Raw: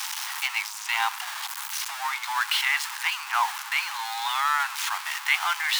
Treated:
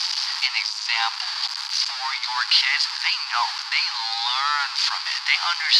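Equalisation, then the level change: resonant low-pass 4.7 kHz, resonance Q 9.4; 0.0 dB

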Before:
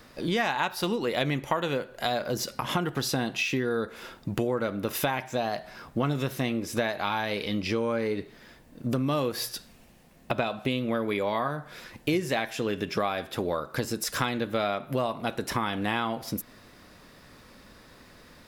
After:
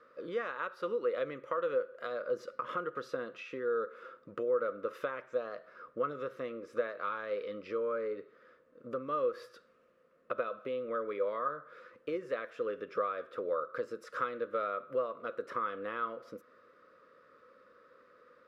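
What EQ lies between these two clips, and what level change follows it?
two resonant band-passes 800 Hz, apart 1.3 oct; +1.5 dB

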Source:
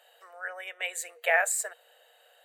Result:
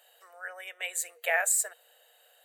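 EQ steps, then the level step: treble shelf 5.4 kHz +11 dB; -4.0 dB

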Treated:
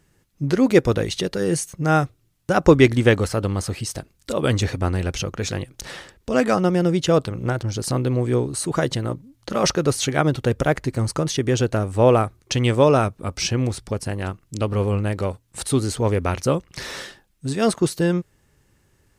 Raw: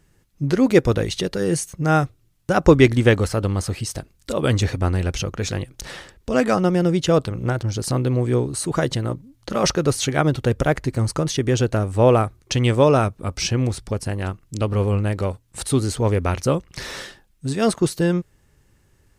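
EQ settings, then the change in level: bass shelf 66 Hz -7 dB; 0.0 dB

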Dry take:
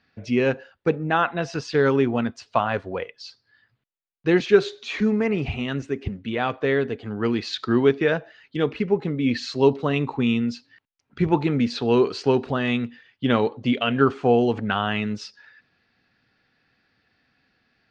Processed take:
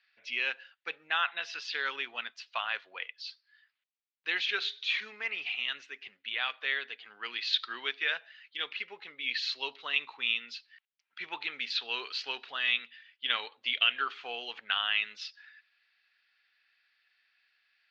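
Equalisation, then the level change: dynamic bell 3.5 kHz, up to +5 dB, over -47 dBFS, Q 2.1; Butterworth band-pass 5 kHz, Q 0.62; distance through air 210 m; +4.0 dB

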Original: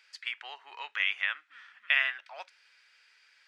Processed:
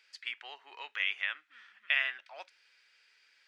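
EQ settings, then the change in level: peaking EQ 1.1 kHz -10.5 dB 2.6 oct; treble shelf 3.8 kHz -10.5 dB; +6.0 dB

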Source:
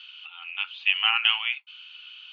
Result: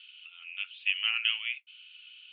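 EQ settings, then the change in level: Butterworth band-pass 3 kHz, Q 1.1; distance through air 260 m; -2.0 dB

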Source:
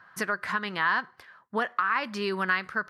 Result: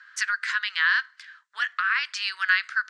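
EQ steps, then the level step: Chebyshev band-pass 1.5–7.6 kHz, order 3; treble shelf 2.8 kHz +8 dB; +4.0 dB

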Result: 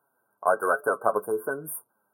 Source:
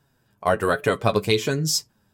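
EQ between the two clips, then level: high-pass 530 Hz 12 dB/octave; brick-wall FIR band-stop 1.6–8.8 kHz; 0.0 dB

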